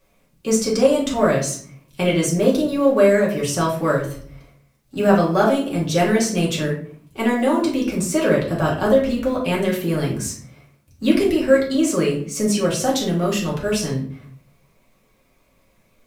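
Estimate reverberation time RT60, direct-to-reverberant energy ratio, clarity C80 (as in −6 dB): 0.55 s, −5.0 dB, 11.0 dB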